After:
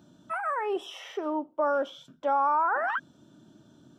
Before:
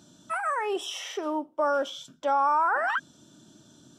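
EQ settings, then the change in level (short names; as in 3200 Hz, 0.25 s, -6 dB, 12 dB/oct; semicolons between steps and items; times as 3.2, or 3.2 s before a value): bell 7600 Hz -14.5 dB 2.2 oct; 0.0 dB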